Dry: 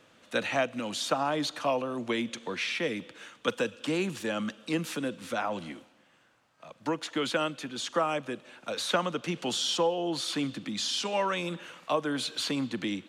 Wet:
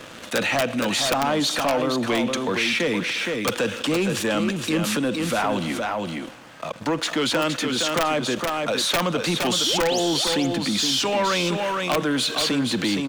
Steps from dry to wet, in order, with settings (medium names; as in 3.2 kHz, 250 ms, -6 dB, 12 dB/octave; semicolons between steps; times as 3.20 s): integer overflow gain 17.5 dB; painted sound rise, 9.66–10.00 s, 270–7600 Hz -36 dBFS; waveshaping leveller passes 2; on a send: delay 466 ms -7 dB; on the sum: level flattener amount 50%